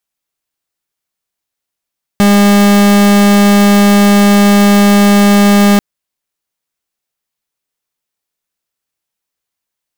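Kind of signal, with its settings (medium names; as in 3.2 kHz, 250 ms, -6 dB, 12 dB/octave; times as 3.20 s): pulse 203 Hz, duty 42% -6.5 dBFS 3.59 s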